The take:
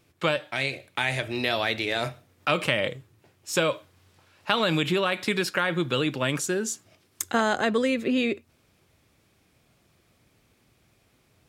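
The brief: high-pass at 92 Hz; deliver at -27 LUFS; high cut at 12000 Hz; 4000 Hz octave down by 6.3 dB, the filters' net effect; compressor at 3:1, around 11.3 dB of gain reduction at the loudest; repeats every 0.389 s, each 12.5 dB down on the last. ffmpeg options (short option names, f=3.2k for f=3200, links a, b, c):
-af "highpass=92,lowpass=12k,equalizer=f=4k:t=o:g=-8.5,acompressor=threshold=-36dB:ratio=3,aecho=1:1:389|778|1167:0.237|0.0569|0.0137,volume=10.5dB"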